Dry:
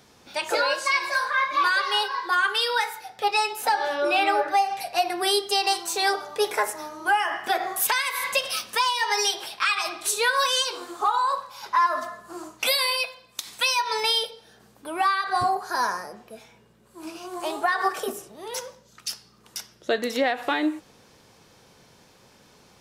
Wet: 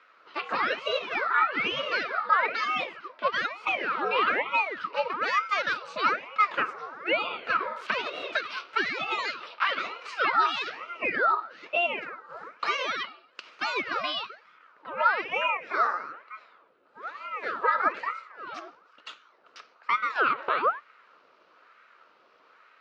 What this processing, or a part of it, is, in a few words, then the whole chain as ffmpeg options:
voice changer toy: -af "aeval=exprs='val(0)*sin(2*PI*940*n/s+940*0.85/1.1*sin(2*PI*1.1*n/s))':channel_layout=same,highpass=440,equalizer=frequency=490:width_type=q:width=4:gain=3,equalizer=frequency=790:width_type=q:width=4:gain=-7,equalizer=frequency=1300:width_type=q:width=4:gain=9,equalizer=frequency=1900:width_type=q:width=4:gain=-4,equalizer=frequency=3400:width_type=q:width=4:gain=-6,lowpass=frequency=3500:width=0.5412,lowpass=frequency=3500:width=1.3066"

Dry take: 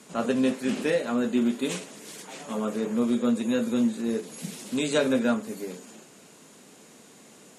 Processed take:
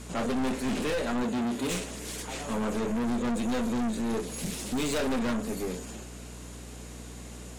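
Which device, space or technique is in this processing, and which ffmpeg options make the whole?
valve amplifier with mains hum: -filter_complex "[0:a]aeval=exprs='(tanh(44.7*val(0)+0.4)-tanh(0.4))/44.7':channel_layout=same,aeval=exprs='val(0)+0.00355*(sin(2*PI*60*n/s)+sin(2*PI*2*60*n/s)/2+sin(2*PI*3*60*n/s)/3+sin(2*PI*4*60*n/s)/4+sin(2*PI*5*60*n/s)/5)':channel_layout=same,asettb=1/sr,asplit=3[link_01][link_02][link_03];[link_01]atrim=end=1.234[link_04];[link_02]atrim=start=1.23:end=1.7,asetpts=PTS-STARTPTS,afade=type=in:duration=0.004:curve=qsin,afade=type=out:start_time=0.466:duration=0.004:curve=qsin,highpass=90[link_05];[link_03]atrim=start=1.696[link_06];[link_04][link_05]acrossfade=duration=0.004:curve1=hsin:curve2=qsin[link_07];[link_07][link_06]acrossfade=duration=0.004:curve1=qsin:curve2=hsin,volume=6dB"

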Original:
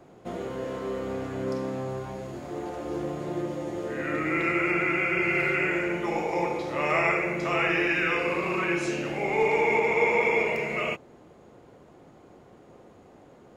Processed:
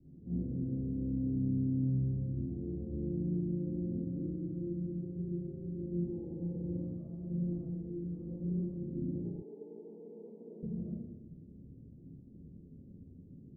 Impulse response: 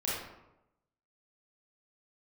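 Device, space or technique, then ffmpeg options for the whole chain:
club heard from the street: -filter_complex "[0:a]alimiter=limit=-22.5dB:level=0:latency=1:release=181,lowpass=frequency=230:width=0.5412,lowpass=frequency=230:width=1.3066[link_01];[1:a]atrim=start_sample=2205[link_02];[link_01][link_02]afir=irnorm=-1:irlink=0,asettb=1/sr,asplit=3[link_03][link_04][link_05];[link_03]atrim=end=4.694[link_06];[link_04]atrim=start=4.69:end=5.87,asetpts=PTS-STARTPTS,afade=type=in:duration=0.004:curve=qsin,afade=type=out:start_time=1.176:duration=0.004:curve=qsin,equalizer=frequency=3600:width=0.31:gain=-4.5[link_07];[link_05]atrim=start=5.866[link_08];[link_06][link_07]acrossfade=duration=0.004:curve1=hsin:curve2=qsin[link_09];[link_09][link_08]acrossfade=duration=0.004:curve1=qsin:curve2=hsin,asettb=1/sr,asplit=3[link_10][link_11][link_12];[link_10]atrim=end=9.424[link_13];[link_11]atrim=start=9.42:end=10.63,asetpts=PTS-STARTPTS,afade=type=in:duration=0.004:curve=qsin,afade=type=out:start_time=1.206:duration=0.004:curve=qsin,highpass=frequency=280:width=0.5412,highpass=frequency=280:width=1.3066[link_14];[link_12]atrim=start=10.626[link_15];[link_13][link_14]acrossfade=duration=0.004:curve1=hsin:curve2=qsin[link_16];[link_16][link_15]acrossfade=duration=0.004:curve1=qsin:curve2=hsin"

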